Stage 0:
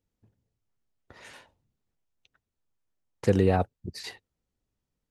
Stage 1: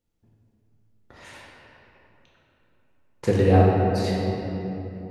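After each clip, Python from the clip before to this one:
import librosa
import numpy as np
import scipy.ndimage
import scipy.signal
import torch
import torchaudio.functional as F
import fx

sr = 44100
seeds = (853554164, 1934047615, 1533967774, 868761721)

y = fx.room_shoebox(x, sr, seeds[0], volume_m3=220.0, walls='hard', distance_m=0.86)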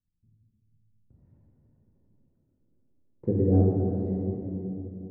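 y = fx.filter_sweep_lowpass(x, sr, from_hz=160.0, to_hz=330.0, start_s=1.39, end_s=3.07, q=1.3)
y = y * 10.0 ** (-4.5 / 20.0)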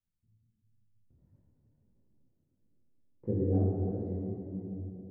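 y = fx.echo_filtered(x, sr, ms=629, feedback_pct=71, hz=1000.0, wet_db=-20.0)
y = fx.detune_double(y, sr, cents=52)
y = y * 10.0 ** (-3.0 / 20.0)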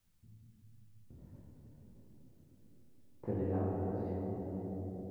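y = fx.spectral_comp(x, sr, ratio=2.0)
y = y * 10.0 ** (-7.0 / 20.0)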